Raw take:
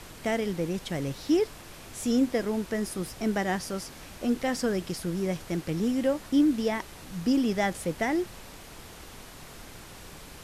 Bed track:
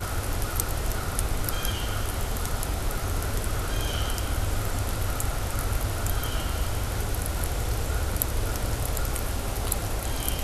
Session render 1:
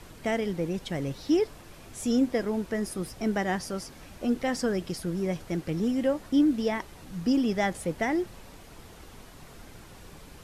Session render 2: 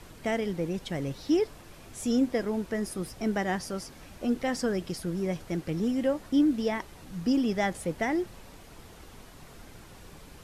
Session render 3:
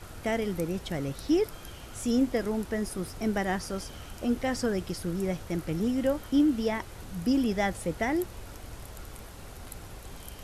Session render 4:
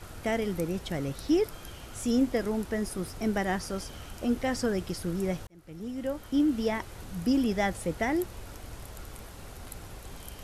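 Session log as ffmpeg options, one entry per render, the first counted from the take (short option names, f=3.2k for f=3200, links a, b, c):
-af "afftdn=nr=6:nf=-46"
-af "volume=-1dB"
-filter_complex "[1:a]volume=-17dB[a];[0:a][a]amix=inputs=2:normalize=0"
-filter_complex "[0:a]asplit=2[a][b];[a]atrim=end=5.47,asetpts=PTS-STARTPTS,afade=t=out:st=5.466:d=0.004:c=hsin[c];[b]atrim=start=5.47,asetpts=PTS-STARTPTS,afade=t=in:d=1.18[d];[c][d]concat=n=2:v=0:a=1"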